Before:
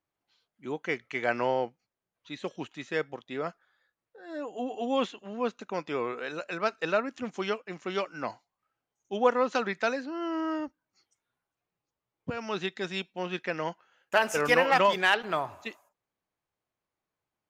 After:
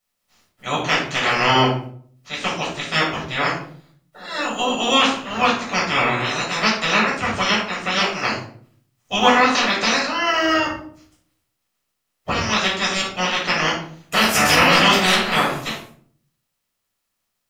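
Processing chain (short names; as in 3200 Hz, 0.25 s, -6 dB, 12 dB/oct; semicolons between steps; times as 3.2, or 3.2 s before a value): spectral limiter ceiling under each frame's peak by 27 dB; limiter -15.5 dBFS, peak gain reduction 9 dB; shoebox room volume 610 m³, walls furnished, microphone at 6.5 m; gain +4.5 dB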